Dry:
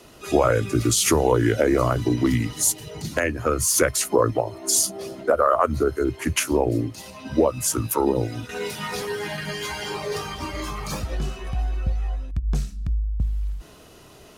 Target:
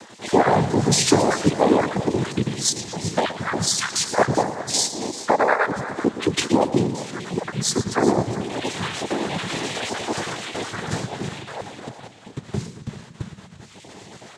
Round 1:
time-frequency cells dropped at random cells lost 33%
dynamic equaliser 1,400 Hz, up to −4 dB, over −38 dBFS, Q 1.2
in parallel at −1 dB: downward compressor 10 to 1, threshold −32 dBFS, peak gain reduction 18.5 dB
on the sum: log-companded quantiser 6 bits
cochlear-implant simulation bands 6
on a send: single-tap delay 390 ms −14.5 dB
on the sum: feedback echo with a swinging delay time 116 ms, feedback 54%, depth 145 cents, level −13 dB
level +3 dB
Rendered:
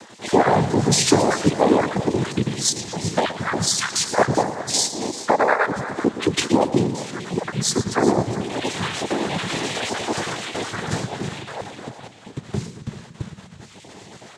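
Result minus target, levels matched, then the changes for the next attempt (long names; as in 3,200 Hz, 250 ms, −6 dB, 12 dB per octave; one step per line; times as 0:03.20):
downward compressor: peak gain reduction −6 dB
change: downward compressor 10 to 1, threshold −38.5 dBFS, peak gain reduction 24.5 dB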